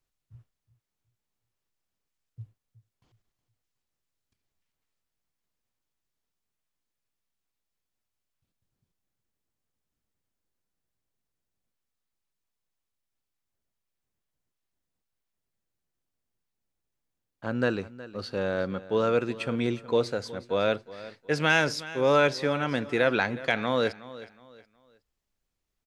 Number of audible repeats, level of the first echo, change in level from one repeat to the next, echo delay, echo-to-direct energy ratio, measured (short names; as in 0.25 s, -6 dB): 2, -17.0 dB, -10.0 dB, 0.367 s, -16.5 dB